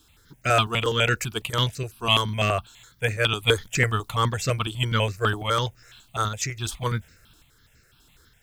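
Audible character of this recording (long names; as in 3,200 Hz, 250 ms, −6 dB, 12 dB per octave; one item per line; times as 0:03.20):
a quantiser's noise floor 12 bits, dither triangular
sample-and-hold tremolo
notches that jump at a steady rate 12 Hz 540–3,300 Hz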